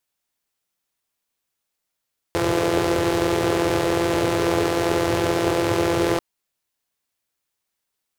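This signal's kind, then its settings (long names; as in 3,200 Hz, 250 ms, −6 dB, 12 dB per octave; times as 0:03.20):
pulse-train model of a four-cylinder engine, steady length 3.84 s, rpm 5,100, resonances 110/380 Hz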